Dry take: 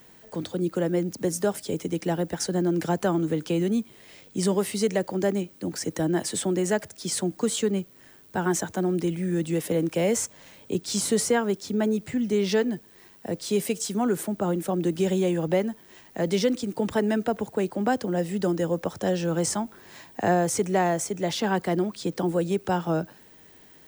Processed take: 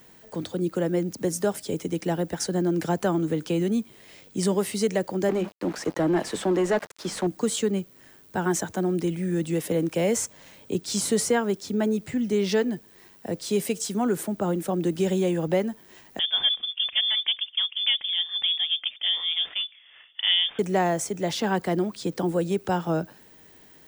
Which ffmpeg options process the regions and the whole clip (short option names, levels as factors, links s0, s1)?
-filter_complex "[0:a]asettb=1/sr,asplit=3[s0][s1][s2];[s0]atrim=end=5.294[s3];[s1]atrim=start=5.29:end=7.27,asetpts=PTS-STARTPTS,afade=t=in:d=0.004:c=qsin,afade=t=out:st=1.976:d=0.004:c=qsin,bandreject=f=50:t=h:w=6,bandreject=f=100:t=h:w=6,bandreject=f=150:t=h:w=6,bandreject=f=200:t=h:w=6,bandreject=f=250:t=h:w=6,aeval=exprs='val(0)*gte(abs(val(0)),0.01)':c=same,asplit=2[s4][s5];[s5]highpass=f=720:p=1,volume=7.94,asoftclip=type=tanh:threshold=0.224[s6];[s4][s6]amix=inputs=2:normalize=0,lowpass=f=1100:p=1,volume=0.501[s7];[s2]atrim=start=7.266[s8];[s3][s7]acrossfade=d=0.004:c1=hsin:c2=qsin[s9];[s9][s8]acrossfade=d=0.004:c1=qsin:c2=hsin,asettb=1/sr,asplit=3[s10][s11][s12];[s10]atrim=end=16.194[s13];[s11]atrim=start=16.19:end=20.59,asetpts=PTS-STARTPTS,afade=t=in:d=0.004:c=qsin,afade=t=out:st=4.396:d=0.004:c=qsin,highpass=f=190:w=0.5412,highpass=f=190:w=1.3066,adynamicsmooth=sensitivity=5:basefreq=1400,lowpass=f=3100:t=q:w=0.5098,lowpass=f=3100:t=q:w=0.6013,lowpass=f=3100:t=q:w=0.9,lowpass=f=3100:t=q:w=2.563,afreqshift=-3700[s14];[s12]atrim=start=20.586[s15];[s13][s14]acrossfade=d=0.004:c1=hsin:c2=qsin[s16];[s16][s15]acrossfade=d=0.004:c1=qsin:c2=hsin"